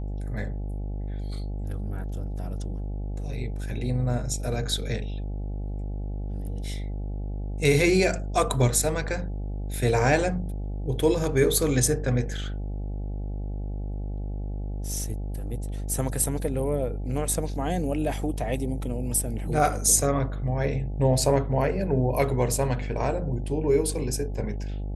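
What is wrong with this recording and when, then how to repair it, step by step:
buzz 50 Hz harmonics 17 -31 dBFS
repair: de-hum 50 Hz, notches 17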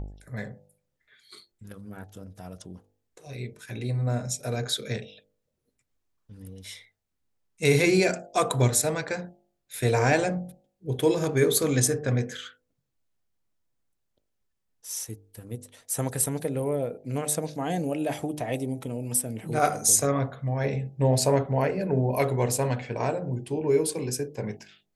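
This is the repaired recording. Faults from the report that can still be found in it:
none

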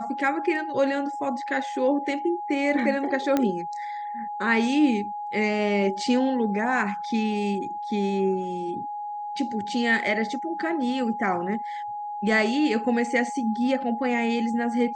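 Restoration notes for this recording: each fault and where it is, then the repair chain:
tone 830 Hz -30 dBFS
3.37 pop -10 dBFS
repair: de-click; notch 830 Hz, Q 30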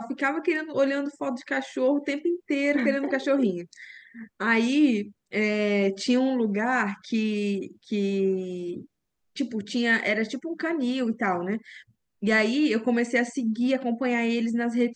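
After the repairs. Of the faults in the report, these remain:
none

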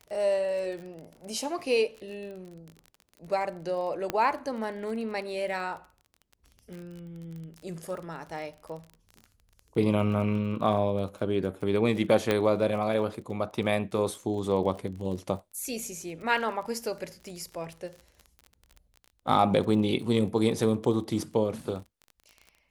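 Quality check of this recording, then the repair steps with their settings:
crackle 31/s -37 dBFS
4.1 pop -14 dBFS
12.31 pop -12 dBFS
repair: de-click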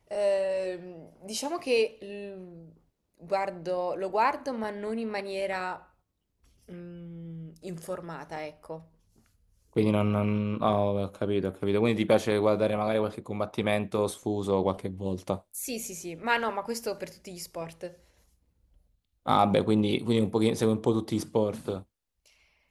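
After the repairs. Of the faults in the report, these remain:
none

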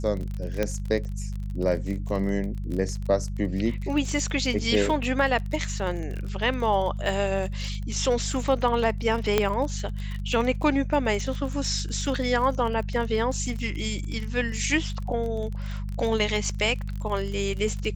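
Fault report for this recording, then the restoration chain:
crackle 31/s -31 dBFS
hum 50 Hz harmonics 4 -31 dBFS
0.63 pop -12 dBFS
9.38 pop -7 dBFS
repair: de-click; de-hum 50 Hz, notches 4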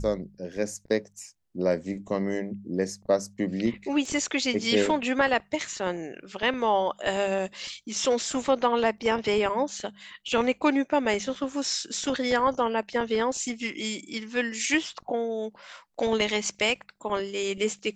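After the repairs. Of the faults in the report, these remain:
none

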